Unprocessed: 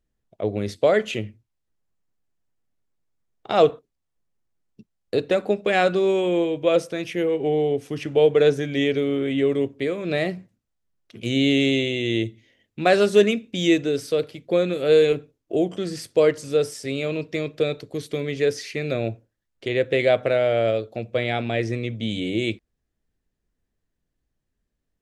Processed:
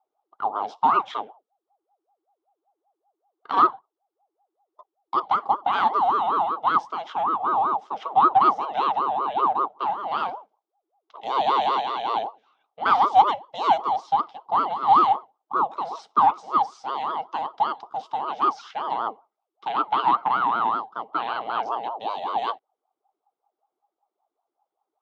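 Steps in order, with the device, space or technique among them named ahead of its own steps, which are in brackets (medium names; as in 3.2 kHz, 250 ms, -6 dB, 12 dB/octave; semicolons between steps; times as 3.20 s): voice changer toy (ring modulator with a swept carrier 570 Hz, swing 45%, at 5.2 Hz; cabinet simulation 490–4700 Hz, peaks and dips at 540 Hz -7 dB, 800 Hz +9 dB, 1.2 kHz +6 dB, 1.8 kHz -9 dB, 2.5 kHz -10 dB, 4.4 kHz -8 dB)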